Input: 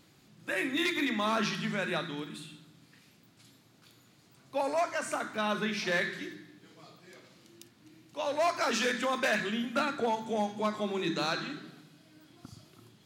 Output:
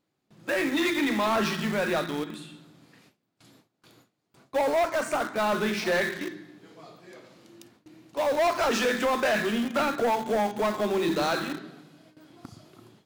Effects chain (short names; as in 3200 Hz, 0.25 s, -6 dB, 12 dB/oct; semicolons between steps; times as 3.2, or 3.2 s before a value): gate with hold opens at -49 dBFS; bell 570 Hz +8.5 dB 2.7 oct; in parallel at -8 dB: bit-crush 5-bit; on the sum: soft clip -20 dBFS, distortion -11 dB